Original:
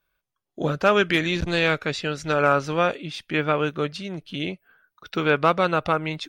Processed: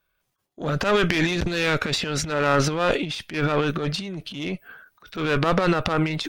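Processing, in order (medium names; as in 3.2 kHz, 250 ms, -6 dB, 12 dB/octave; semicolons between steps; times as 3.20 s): single-diode clipper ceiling -23.5 dBFS; transient shaper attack -8 dB, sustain +12 dB; trim +2 dB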